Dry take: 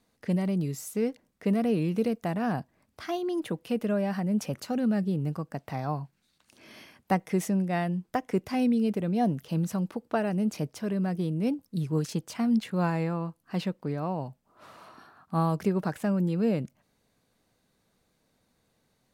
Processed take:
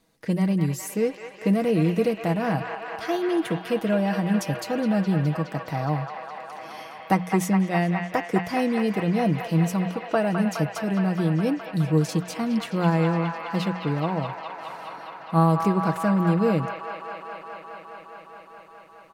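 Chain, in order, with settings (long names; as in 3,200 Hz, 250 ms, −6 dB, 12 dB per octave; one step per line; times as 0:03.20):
mains-hum notches 60/120/180 Hz
comb filter 6.2 ms, depth 49%
on a send: delay with a band-pass on its return 208 ms, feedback 84%, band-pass 1,600 Hz, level −3.5 dB
on the sum: level +4 dB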